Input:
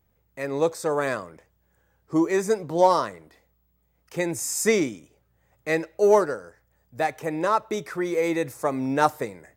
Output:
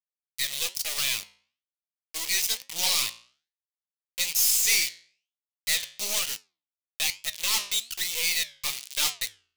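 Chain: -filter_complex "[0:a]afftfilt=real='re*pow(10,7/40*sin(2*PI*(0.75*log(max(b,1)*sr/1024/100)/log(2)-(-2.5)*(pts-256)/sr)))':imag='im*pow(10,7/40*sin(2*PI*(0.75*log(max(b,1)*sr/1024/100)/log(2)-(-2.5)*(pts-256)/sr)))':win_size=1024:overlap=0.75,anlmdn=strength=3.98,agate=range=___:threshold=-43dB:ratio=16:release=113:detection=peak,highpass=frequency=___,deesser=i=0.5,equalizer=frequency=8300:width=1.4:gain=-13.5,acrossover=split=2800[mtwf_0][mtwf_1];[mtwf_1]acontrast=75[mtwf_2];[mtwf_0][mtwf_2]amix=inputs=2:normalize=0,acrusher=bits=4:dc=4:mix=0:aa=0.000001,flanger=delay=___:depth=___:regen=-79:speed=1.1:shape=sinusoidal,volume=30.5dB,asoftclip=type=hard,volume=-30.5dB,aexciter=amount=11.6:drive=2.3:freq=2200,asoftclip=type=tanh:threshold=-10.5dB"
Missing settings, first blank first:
-9dB, 1100, 9.9, 7.5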